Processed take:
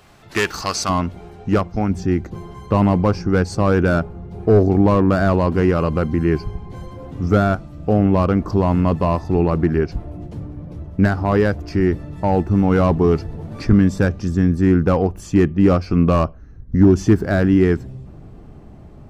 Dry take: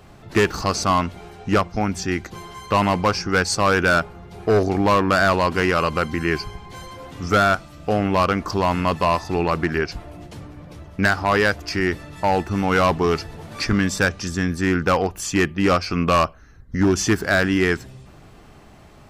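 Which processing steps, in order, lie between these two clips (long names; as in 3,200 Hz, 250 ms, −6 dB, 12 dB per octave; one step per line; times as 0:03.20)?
tilt shelving filter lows −4 dB, about 790 Hz, from 0:00.88 lows +5.5 dB, from 0:01.89 lows +10 dB
level −1.5 dB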